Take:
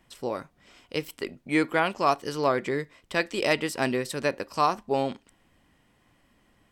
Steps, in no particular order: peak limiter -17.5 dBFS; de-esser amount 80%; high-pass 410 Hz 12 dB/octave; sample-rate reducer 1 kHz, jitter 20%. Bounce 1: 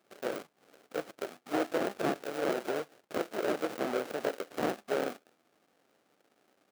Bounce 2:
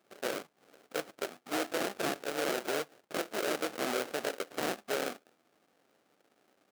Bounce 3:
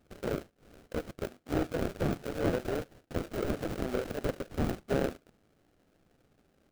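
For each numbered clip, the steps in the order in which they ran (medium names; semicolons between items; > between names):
sample-rate reducer > de-esser > high-pass > peak limiter; de-esser > sample-rate reducer > high-pass > peak limiter; high-pass > peak limiter > sample-rate reducer > de-esser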